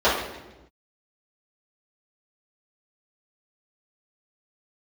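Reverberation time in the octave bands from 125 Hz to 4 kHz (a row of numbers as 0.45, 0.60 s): 1.2, 1.4, 1.1, 0.95, 0.90, 0.85 s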